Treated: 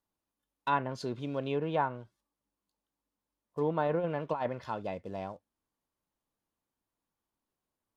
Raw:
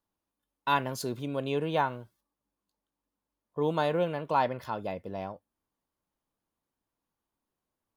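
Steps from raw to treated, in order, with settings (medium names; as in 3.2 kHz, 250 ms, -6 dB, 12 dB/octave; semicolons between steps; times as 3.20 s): in parallel at -6 dB: short-mantissa float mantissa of 2-bit; 3.86–4.50 s: on the sum: compressor with a negative ratio -24 dBFS, ratio -0.5; low-pass that closes with the level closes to 1.8 kHz, closed at -21.5 dBFS; trim -5.5 dB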